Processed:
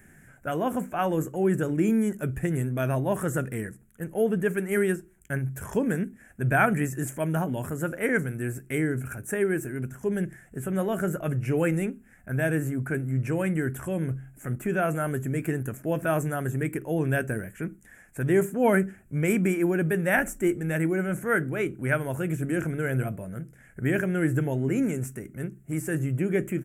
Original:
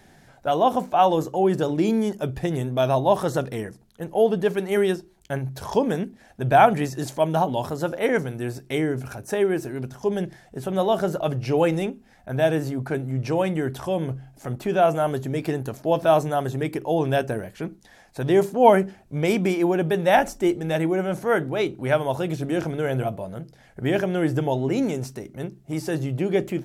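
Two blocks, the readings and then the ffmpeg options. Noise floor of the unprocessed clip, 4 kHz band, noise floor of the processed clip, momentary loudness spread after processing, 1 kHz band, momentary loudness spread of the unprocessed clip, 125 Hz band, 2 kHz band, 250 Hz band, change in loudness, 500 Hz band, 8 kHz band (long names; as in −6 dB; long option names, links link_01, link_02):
−54 dBFS, −13.0 dB, −55 dBFS, 9 LU, −10.0 dB, 12 LU, 0.0 dB, +1.5 dB, −1.5 dB, −4.0 dB, −6.5 dB, +1.5 dB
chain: -af "firequalizer=gain_entry='entry(190,0);entry(840,-14);entry(1500,3);entry(2400,-2);entry(4100,-26);entry(7500,4)':delay=0.05:min_phase=1"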